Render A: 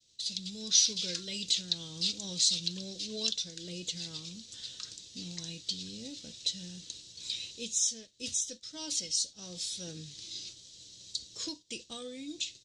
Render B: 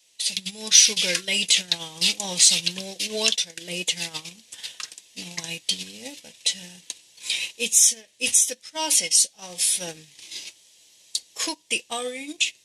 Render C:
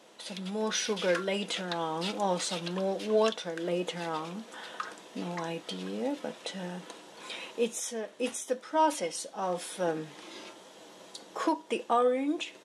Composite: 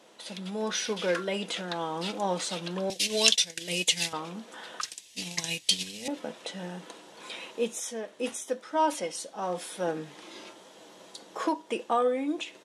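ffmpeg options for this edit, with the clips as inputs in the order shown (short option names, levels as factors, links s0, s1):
-filter_complex "[1:a]asplit=2[s0][s1];[2:a]asplit=3[s2][s3][s4];[s2]atrim=end=2.902[s5];[s0]atrim=start=2.898:end=4.132[s6];[s3]atrim=start=4.128:end=4.812[s7];[s1]atrim=start=4.808:end=6.082[s8];[s4]atrim=start=6.078[s9];[s5][s6]acrossfade=d=0.004:c1=hsin:c2=hsin[s10];[s10][s7]acrossfade=d=0.004:c1=hsin:c2=hsin[s11];[s11][s8]acrossfade=d=0.004:c1=hsin:c2=hsin[s12];[s12][s9]acrossfade=d=0.004:c1=hsin:c2=hsin"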